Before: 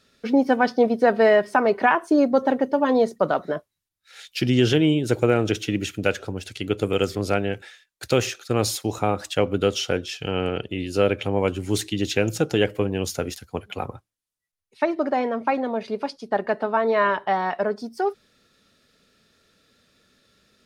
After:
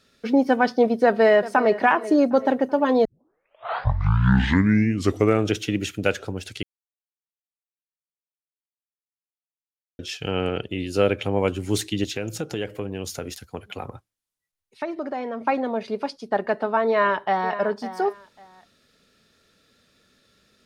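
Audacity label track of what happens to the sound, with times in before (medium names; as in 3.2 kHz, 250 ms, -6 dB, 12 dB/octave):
1.040000	1.760000	echo throw 380 ms, feedback 40%, level -15.5 dB
3.050000	3.050000	tape start 2.47 s
6.630000	9.990000	mute
12.040000	15.410000	compression 2:1, threshold -30 dBFS
16.880000	17.570000	echo throw 550 ms, feedback 20%, level -13 dB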